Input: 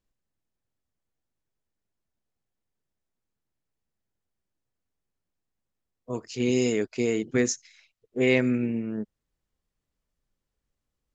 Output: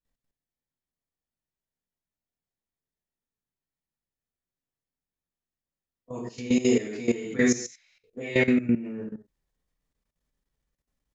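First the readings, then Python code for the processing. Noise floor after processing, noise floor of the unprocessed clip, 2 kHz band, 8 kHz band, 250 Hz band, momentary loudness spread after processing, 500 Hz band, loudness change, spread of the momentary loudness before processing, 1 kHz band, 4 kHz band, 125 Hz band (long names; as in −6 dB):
below −85 dBFS, −85 dBFS, +1.0 dB, can't be measured, +1.5 dB, 17 LU, −1.5 dB, +1.0 dB, 14 LU, −0.5 dB, −1.5 dB, −2.0 dB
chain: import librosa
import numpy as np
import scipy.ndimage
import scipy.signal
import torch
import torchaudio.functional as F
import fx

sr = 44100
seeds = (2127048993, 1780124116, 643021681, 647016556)

y = fx.rev_gated(x, sr, seeds[0], gate_ms=240, shape='falling', drr_db=-8.0)
y = fx.level_steps(y, sr, step_db=15)
y = y * 10.0 ** (-4.5 / 20.0)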